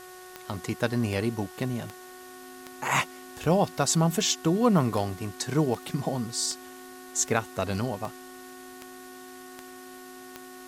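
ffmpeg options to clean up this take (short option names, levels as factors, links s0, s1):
-af "adeclick=t=4,bandreject=f=367.5:t=h:w=4,bandreject=f=735:t=h:w=4,bandreject=f=1102.5:t=h:w=4,bandreject=f=1470:t=h:w=4,bandreject=f=1837.5:t=h:w=4,bandreject=f=260:w=30,afwtdn=0.0032"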